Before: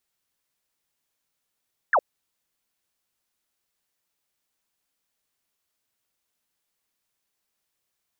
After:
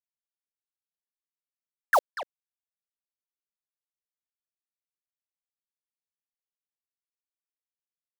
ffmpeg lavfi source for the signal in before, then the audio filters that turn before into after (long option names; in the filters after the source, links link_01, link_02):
-f lavfi -i "aevalsrc='0.168*clip(t/0.002,0,1)*clip((0.06-t)/0.002,0,1)*sin(2*PI*1900*0.06/log(490/1900)*(exp(log(490/1900)*t/0.06)-1))':duration=0.06:sample_rate=44100"
-filter_complex "[0:a]equalizer=frequency=100:width=1.1:gain=-3,acrusher=bits=6:dc=4:mix=0:aa=0.000001,asplit=2[link_01][link_02];[link_02]adelay=240,highpass=300,lowpass=3400,asoftclip=type=hard:threshold=-22.5dB,volume=-9dB[link_03];[link_01][link_03]amix=inputs=2:normalize=0"